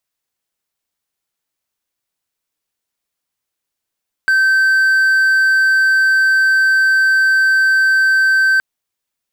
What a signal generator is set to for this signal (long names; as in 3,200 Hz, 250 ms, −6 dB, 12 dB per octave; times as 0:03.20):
tone triangle 1,550 Hz −7.5 dBFS 4.32 s